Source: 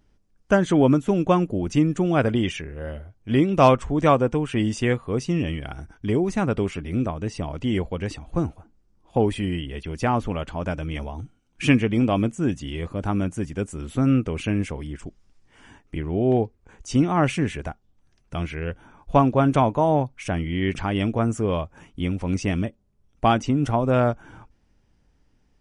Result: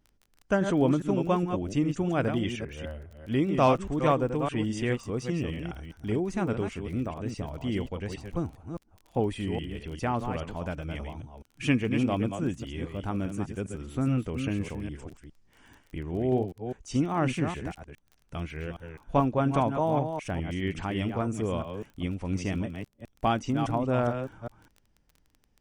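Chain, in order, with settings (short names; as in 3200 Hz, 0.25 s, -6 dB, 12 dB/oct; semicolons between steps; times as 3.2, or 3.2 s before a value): reverse delay 0.204 s, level -7 dB; crackle 26/s -34 dBFS; gain -7 dB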